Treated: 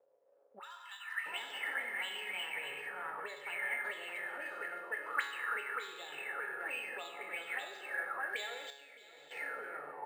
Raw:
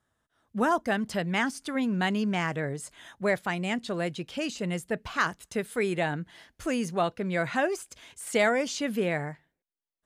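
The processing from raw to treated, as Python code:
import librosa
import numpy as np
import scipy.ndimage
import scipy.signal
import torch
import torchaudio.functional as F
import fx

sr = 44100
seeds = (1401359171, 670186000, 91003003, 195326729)

y = x + 0.49 * np.pad(x, (int(2.3 * sr / 1000.0), 0))[:len(x)]
y = y + 10.0 ** (-6.0 / 20.0) * np.pad(y, (int(613 * sr / 1000.0), 0))[:len(y)]
y = fx.rev_plate(y, sr, seeds[0], rt60_s=2.9, hf_ratio=0.9, predelay_ms=0, drr_db=0.5)
y = fx.dmg_crackle(y, sr, seeds[1], per_s=440.0, level_db=-47.0)
y = fx.low_shelf(y, sr, hz=230.0, db=-9.0, at=(4.64, 5.1))
y = fx.auto_wah(y, sr, base_hz=520.0, top_hz=3700.0, q=11.0, full_db=-20.5, direction='up')
y = fx.cheby1_bandstop(y, sr, low_hz=120.0, high_hz=1100.0, order=3, at=(0.58, 1.25), fade=0.02)
y = fx.level_steps(y, sr, step_db=20, at=(8.7, 9.31))
y = fx.peak_eq(y, sr, hz=570.0, db=13.5, octaves=2.7)
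y = fx.comb_fb(y, sr, f0_hz=140.0, decay_s=0.85, harmonics='all', damping=0.0, mix_pct=80)
y = np.interp(np.arange(len(y)), np.arange(len(y))[::4], y[::4])
y = y * 10.0 ** (10.5 / 20.0)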